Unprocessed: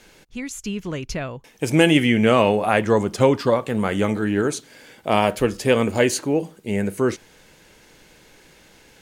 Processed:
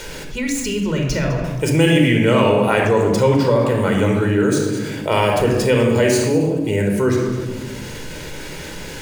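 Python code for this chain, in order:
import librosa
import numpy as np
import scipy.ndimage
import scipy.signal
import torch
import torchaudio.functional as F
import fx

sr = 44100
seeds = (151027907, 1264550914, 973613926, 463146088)

p1 = scipy.signal.medfilt(x, 3)
p2 = fx.high_shelf(p1, sr, hz=6400.0, db=5.0)
p3 = p2 + fx.echo_single(p2, sr, ms=205, db=-16.5, dry=0)
p4 = fx.room_shoebox(p3, sr, seeds[0], volume_m3=3800.0, walls='furnished', distance_m=4.7)
p5 = fx.env_flatten(p4, sr, amount_pct=50)
y = p5 * librosa.db_to_amplitude(-5.5)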